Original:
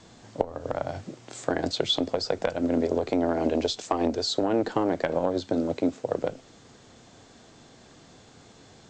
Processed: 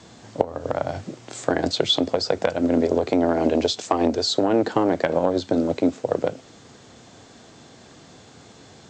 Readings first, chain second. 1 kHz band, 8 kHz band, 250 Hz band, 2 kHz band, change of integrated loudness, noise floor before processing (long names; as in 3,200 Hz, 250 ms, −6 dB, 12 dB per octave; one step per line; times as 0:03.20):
+5.0 dB, +5.0 dB, +5.0 dB, +5.0 dB, +5.0 dB, −53 dBFS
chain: high-pass filter 60 Hz
level +5 dB